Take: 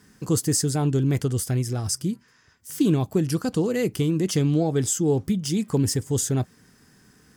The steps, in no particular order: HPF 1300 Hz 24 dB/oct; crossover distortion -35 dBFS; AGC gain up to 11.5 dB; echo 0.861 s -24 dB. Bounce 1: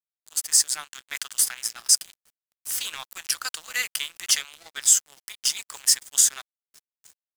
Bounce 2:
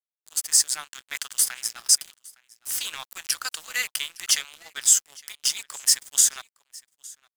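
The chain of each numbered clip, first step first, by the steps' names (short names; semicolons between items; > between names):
HPF > AGC > echo > crossover distortion; HPF > AGC > crossover distortion > echo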